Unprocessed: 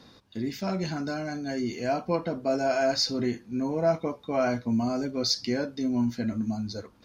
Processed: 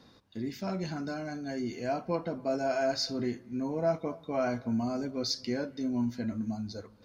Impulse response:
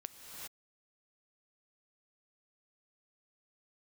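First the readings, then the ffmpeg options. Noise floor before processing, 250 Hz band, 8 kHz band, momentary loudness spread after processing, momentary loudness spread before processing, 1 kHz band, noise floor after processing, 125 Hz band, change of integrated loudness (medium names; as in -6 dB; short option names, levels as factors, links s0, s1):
-56 dBFS, -4.5 dB, no reading, 7 LU, 7 LU, -4.5 dB, -58 dBFS, -4.5 dB, -4.5 dB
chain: -filter_complex "[0:a]asplit=2[s0][s1];[s1]lowpass=2300[s2];[1:a]atrim=start_sample=2205,afade=t=out:st=0.34:d=0.01,atrim=end_sample=15435[s3];[s2][s3]afir=irnorm=-1:irlink=0,volume=0.398[s4];[s0][s4]amix=inputs=2:normalize=0,volume=0.501"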